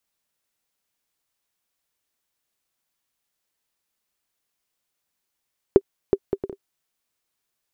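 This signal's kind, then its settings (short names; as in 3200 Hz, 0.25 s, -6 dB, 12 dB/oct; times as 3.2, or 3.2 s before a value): bouncing ball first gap 0.37 s, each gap 0.54, 393 Hz, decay 53 ms -1 dBFS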